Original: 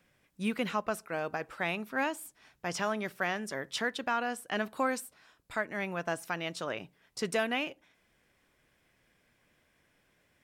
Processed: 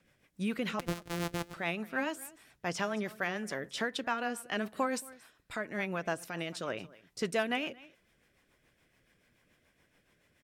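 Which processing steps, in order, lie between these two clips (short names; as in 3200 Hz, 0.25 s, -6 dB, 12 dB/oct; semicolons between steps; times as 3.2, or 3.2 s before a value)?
0.79–1.54 sample sorter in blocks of 256 samples; in parallel at -2 dB: limiter -27 dBFS, peak gain reduction 8 dB; on the sum: echo 0.224 s -21 dB; rotary speaker horn 7 Hz; gain -2.5 dB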